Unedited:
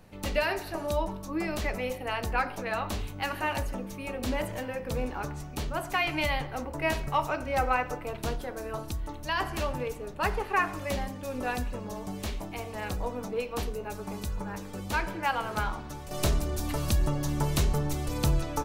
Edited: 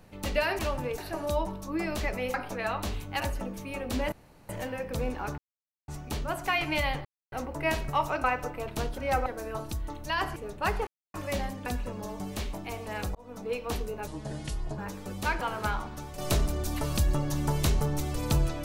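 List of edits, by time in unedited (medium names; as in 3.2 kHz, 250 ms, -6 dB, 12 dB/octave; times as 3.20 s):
1.95–2.41 s: delete
3.27–3.53 s: delete
4.45 s: insert room tone 0.37 s
5.34 s: insert silence 0.50 s
6.51 s: insert silence 0.27 s
7.43–7.71 s: move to 8.45 s
9.55–9.94 s: move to 0.59 s
10.45–10.72 s: mute
11.24–11.53 s: delete
13.02–13.43 s: fade in
13.94–14.46 s: speed 73%
15.09–15.34 s: delete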